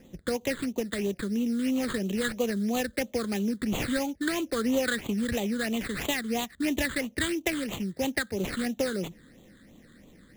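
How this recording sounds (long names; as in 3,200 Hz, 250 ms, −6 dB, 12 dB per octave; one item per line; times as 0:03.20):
aliases and images of a low sample rate 5,600 Hz, jitter 20%
phaser sweep stages 8, 3 Hz, lowest notch 750–1,600 Hz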